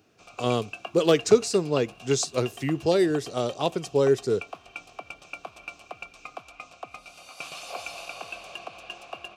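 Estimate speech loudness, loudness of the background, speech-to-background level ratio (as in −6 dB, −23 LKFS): −25.0 LKFS, −40.5 LKFS, 15.5 dB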